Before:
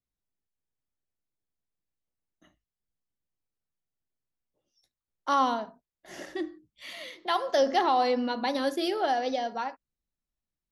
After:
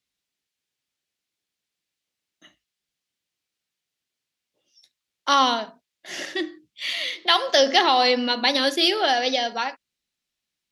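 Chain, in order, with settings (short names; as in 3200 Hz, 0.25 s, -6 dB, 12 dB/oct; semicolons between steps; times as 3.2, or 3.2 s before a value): weighting filter D; gain +5 dB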